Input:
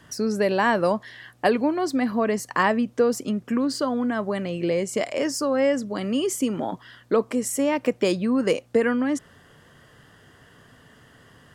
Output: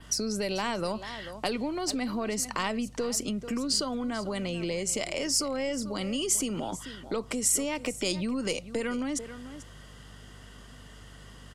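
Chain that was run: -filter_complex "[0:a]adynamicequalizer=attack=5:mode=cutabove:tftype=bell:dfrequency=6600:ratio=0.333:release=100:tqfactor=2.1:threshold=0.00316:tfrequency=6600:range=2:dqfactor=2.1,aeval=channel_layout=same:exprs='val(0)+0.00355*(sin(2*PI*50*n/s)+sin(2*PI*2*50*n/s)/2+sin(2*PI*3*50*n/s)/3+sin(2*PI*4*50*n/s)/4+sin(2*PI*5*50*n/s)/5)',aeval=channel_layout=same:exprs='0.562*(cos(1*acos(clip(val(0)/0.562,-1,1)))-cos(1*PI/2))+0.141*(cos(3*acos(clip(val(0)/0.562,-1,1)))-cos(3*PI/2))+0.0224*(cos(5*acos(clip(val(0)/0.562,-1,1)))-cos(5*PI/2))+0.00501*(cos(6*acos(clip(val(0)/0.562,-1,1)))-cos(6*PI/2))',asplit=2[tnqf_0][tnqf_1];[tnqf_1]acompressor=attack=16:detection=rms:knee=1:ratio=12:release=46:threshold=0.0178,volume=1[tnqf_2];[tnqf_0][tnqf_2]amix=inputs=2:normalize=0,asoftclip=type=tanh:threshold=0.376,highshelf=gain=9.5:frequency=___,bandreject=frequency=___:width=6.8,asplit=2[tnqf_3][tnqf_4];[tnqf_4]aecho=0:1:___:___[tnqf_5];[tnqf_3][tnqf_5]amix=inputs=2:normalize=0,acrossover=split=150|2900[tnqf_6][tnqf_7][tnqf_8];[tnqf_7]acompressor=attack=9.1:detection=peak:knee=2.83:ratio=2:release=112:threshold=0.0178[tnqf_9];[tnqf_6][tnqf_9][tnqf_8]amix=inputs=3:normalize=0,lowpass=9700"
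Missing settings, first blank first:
2700, 1700, 439, 0.133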